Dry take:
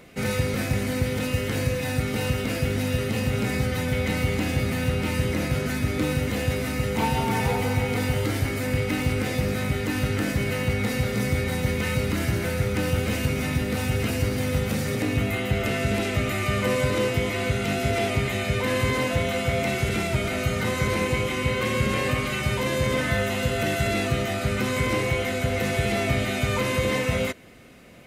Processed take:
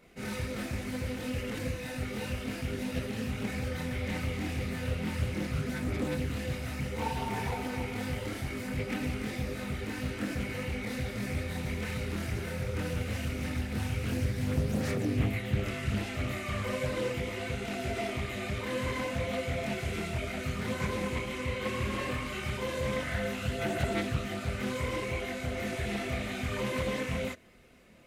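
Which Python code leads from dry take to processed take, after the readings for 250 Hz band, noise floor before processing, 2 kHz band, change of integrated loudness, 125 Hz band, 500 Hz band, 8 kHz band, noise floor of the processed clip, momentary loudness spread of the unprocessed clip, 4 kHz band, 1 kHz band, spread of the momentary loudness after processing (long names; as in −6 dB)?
−8.0 dB, −28 dBFS, −9.5 dB, −9.0 dB, −9.0 dB, −9.5 dB, −10.5 dB, −39 dBFS, 2 LU, −9.5 dB, −9.0 dB, 4 LU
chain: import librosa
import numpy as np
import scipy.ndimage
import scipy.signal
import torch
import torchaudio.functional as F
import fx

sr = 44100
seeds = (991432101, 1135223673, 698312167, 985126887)

y = fx.chorus_voices(x, sr, voices=6, hz=1.4, base_ms=26, depth_ms=3.0, mix_pct=55)
y = fx.doppler_dist(y, sr, depth_ms=0.44)
y = y * librosa.db_to_amplitude(-6.5)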